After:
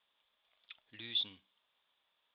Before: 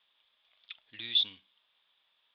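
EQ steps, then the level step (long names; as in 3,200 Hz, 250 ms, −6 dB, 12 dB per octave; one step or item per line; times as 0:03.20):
high-shelf EQ 2,100 Hz −10.5 dB
0.0 dB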